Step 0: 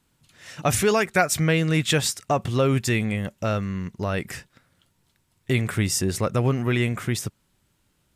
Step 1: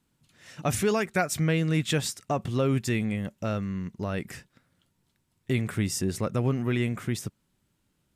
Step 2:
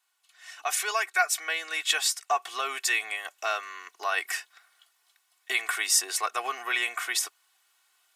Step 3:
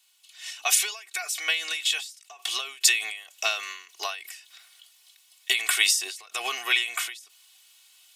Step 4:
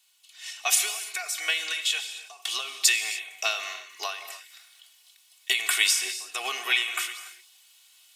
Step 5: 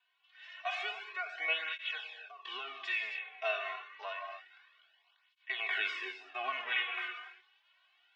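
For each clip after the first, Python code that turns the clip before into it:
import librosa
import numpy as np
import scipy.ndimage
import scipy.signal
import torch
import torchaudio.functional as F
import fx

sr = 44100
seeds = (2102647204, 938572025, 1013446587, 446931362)

y1 = fx.peak_eq(x, sr, hz=220.0, db=5.0, octaves=1.7)
y1 = F.gain(torch.from_numpy(y1), -7.0).numpy()
y2 = scipy.signal.sosfilt(scipy.signal.butter(4, 810.0, 'highpass', fs=sr, output='sos'), y1)
y2 = y2 + 0.89 * np.pad(y2, (int(2.7 * sr / 1000.0), 0))[:len(y2)]
y2 = fx.rider(y2, sr, range_db=4, speed_s=2.0)
y2 = F.gain(torch.from_numpy(y2), 5.0).numpy()
y3 = fx.high_shelf_res(y2, sr, hz=2100.0, db=10.0, q=1.5)
y3 = fx.end_taper(y3, sr, db_per_s=100.0)
y3 = F.gain(torch.from_numpy(y3), 1.5).numpy()
y4 = fx.rev_gated(y3, sr, seeds[0], gate_ms=320, shape='flat', drr_db=9.0)
y4 = F.gain(torch.from_numpy(y4), -1.0).numpy()
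y5 = fx.hpss(y4, sr, part='percussive', gain_db=-15)
y5 = fx.cabinet(y5, sr, low_hz=230.0, low_slope=12, high_hz=2900.0, hz=(590.0, 1000.0, 1600.0), db=(8, 7, 8))
y5 = fx.flanger_cancel(y5, sr, hz=0.28, depth_ms=3.7)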